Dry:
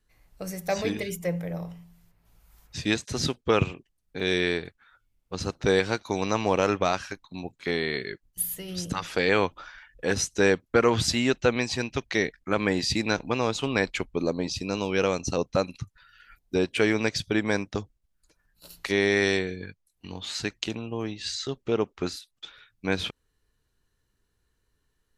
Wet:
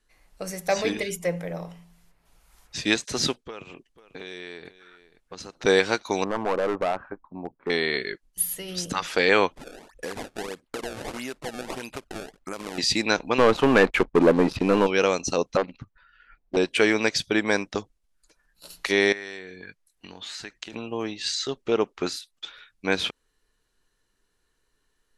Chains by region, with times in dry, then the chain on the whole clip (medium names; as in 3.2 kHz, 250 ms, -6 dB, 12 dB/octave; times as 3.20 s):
3.38–5.65 s: compression 8:1, threshold -37 dBFS + delay 492 ms -16.5 dB
6.24–7.70 s: low-pass 1.2 kHz 24 dB/octave + hard clipper -23 dBFS
9.54–12.78 s: compression 16:1, threshold -31 dBFS + decimation with a swept rate 25×, swing 160% 1.6 Hz
13.38–14.87 s: low-pass 1.5 kHz + waveshaping leveller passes 3
15.57–16.57 s: tape spacing loss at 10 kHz 36 dB + loudspeaker Doppler distortion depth 0.81 ms
19.12–20.73 s: compression 5:1, threshold -39 dBFS + peaking EQ 1.7 kHz +4.5 dB 0.68 oct
whole clip: steep low-pass 12 kHz; peaking EQ 85 Hz -13 dB 2.2 oct; trim +4.5 dB